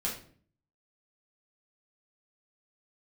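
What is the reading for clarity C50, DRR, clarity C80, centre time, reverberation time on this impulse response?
6.5 dB, -5.0 dB, 11.0 dB, 30 ms, 0.50 s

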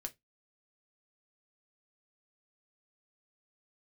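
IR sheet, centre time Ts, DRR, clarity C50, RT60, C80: 5 ms, 5.0 dB, 23.0 dB, 0.15 s, 34.5 dB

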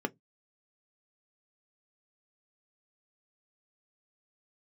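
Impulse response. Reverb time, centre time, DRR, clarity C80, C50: 0.15 s, 5 ms, 7.5 dB, 40.0 dB, 30.0 dB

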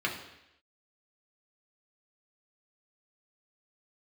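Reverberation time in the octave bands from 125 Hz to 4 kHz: 0.75 s, 0.80 s, 0.85 s, 0.85 s, 0.90 s, 0.90 s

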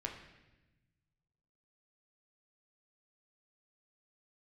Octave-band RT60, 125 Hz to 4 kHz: 2.2 s, 1.6 s, 1.2 s, 0.95 s, 1.1 s, 1.0 s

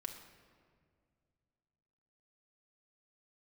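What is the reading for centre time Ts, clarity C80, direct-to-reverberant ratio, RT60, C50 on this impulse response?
28 ms, 9.0 dB, 3.0 dB, 2.1 s, 7.5 dB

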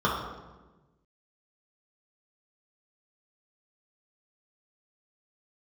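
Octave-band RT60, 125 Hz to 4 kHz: 1.7 s, 1.6 s, 1.3 s, 1.1 s, 1.0 s, 0.80 s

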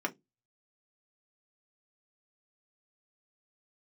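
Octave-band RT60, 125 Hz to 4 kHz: 0.30 s, 0.25 s, 0.20 s, 0.15 s, 0.15 s, 0.15 s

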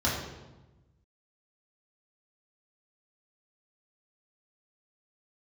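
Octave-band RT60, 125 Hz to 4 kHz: 1.7 s, 1.4 s, 1.1 s, 1.1 s, 0.85 s, 0.80 s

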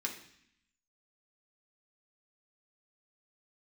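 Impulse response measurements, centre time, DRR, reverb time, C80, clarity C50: 19 ms, -0.5 dB, 0.65 s, 11.5 dB, 8.5 dB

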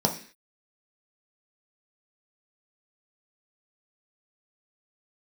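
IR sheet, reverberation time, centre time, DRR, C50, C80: 0.45 s, 14 ms, 1.5 dB, 11.0 dB, 15.5 dB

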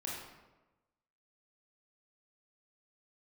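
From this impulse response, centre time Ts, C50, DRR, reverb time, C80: 70 ms, -0.5 dB, -5.0 dB, 1.1 s, 3.0 dB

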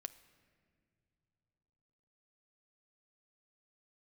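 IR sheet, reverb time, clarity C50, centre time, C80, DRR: no single decay rate, 16.0 dB, 6 ms, 17.0 dB, 11.5 dB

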